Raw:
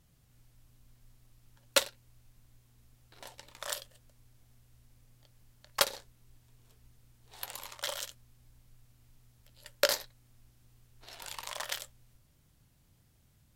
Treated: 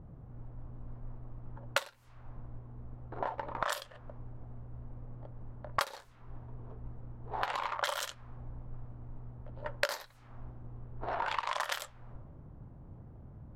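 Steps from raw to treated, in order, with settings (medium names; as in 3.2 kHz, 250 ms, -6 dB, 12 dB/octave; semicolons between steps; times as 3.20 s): level-controlled noise filter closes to 380 Hz, open at -35 dBFS; peaking EQ 1.1 kHz +13 dB 2 oct; compression 8:1, threshold -48 dBFS, peak gain reduction 32.5 dB; trim +16.5 dB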